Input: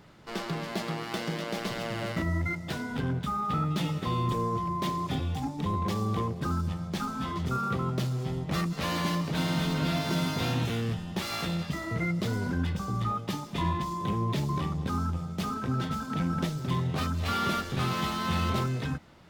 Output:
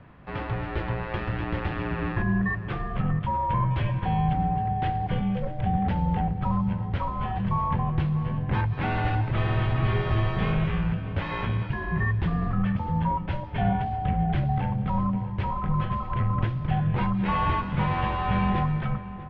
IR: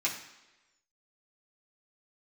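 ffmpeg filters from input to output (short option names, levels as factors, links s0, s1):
-filter_complex "[0:a]lowpass=f=2700:w=0.5412,lowpass=f=2700:w=1.3066,afreqshift=-280,asplit=2[s0][s1];[s1]adelay=641.4,volume=0.2,highshelf=f=4000:g=-14.4[s2];[s0][s2]amix=inputs=2:normalize=0,volume=1.68"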